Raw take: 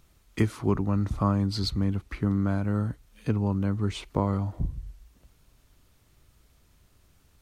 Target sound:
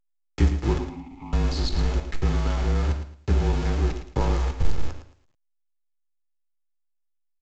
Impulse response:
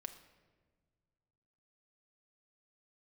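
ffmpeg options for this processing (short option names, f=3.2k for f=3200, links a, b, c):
-filter_complex "[0:a]aeval=exprs='val(0)+0.5*0.0141*sgn(val(0))':c=same,lowshelf=f=140:g=10,bandreject=f=137.7:t=h:w=4,bandreject=f=275.4:t=h:w=4,bandreject=f=413.1:t=h:w=4,bandreject=f=550.8:t=h:w=4,bandreject=f=688.5:t=h:w=4,bandreject=f=826.2:t=h:w=4,bandreject=f=963.9:t=h:w=4,bandreject=f=1.1016k:t=h:w=4,bandreject=f=1.2393k:t=h:w=4,bandreject=f=1.377k:t=h:w=4,bandreject=f=1.5147k:t=h:w=4,bandreject=f=1.6524k:t=h:w=4,bandreject=f=1.7901k:t=h:w=4,bandreject=f=1.9278k:t=h:w=4,bandreject=f=2.0655k:t=h:w=4,bandreject=f=2.2032k:t=h:w=4,bandreject=f=2.3409k:t=h:w=4,bandreject=f=2.4786k:t=h:w=4,bandreject=f=2.6163k:t=h:w=4,bandreject=f=2.754k:t=h:w=4,bandreject=f=2.8917k:t=h:w=4,bandreject=f=3.0294k:t=h:w=4,bandreject=f=3.1671k:t=h:w=4,bandreject=f=3.3048k:t=h:w=4,bandreject=f=3.4425k:t=h:w=4,bandreject=f=3.5802k:t=h:w=4,bandreject=f=3.7179k:t=h:w=4,bandreject=f=3.8556k:t=h:w=4,bandreject=f=3.9933k:t=h:w=4,bandreject=f=4.131k:t=h:w=4,bandreject=f=4.2687k:t=h:w=4,bandreject=f=4.4064k:t=h:w=4,bandreject=f=4.5441k:t=h:w=4,bandreject=f=4.6818k:t=h:w=4,bandreject=f=4.8195k:t=h:w=4,bandreject=f=4.9572k:t=h:w=4,aeval=exprs='val(0)*gte(abs(val(0)),0.0596)':c=same,asettb=1/sr,asplit=3[a][b][c];[a]atrim=end=0.784[d];[b]atrim=start=0.78:end=1.33,asetpts=PTS-STARTPTS,afade=t=in:d=0.004:c=qsin,afade=t=out:st=0.546:d=0.004:c=qsin,asplit=3[e][f][g];[e]bandpass=f=300:t=q:w=8,volume=0dB[h];[f]bandpass=f=870:t=q:w=8,volume=-6dB[i];[g]bandpass=f=2.24k:t=q:w=8,volume=-9dB[j];[h][i][j]amix=inputs=3:normalize=0[k];[c]atrim=start=1.326[l];[d][k]acrossfade=d=0.004:c1=hsin:c2=qsin[m];[m][l]acrossfade=d=0.004:c1=qsin:c2=hsin,afreqshift=-37,aecho=1:1:111|222|333:0.316|0.0791|0.0198[n];[1:a]atrim=start_sample=2205,afade=t=out:st=0.28:d=0.01,atrim=end_sample=12789,asetrate=88200,aresample=44100[o];[n][o]afir=irnorm=-1:irlink=0,volume=8.5dB" -ar 16000 -c:a pcm_alaw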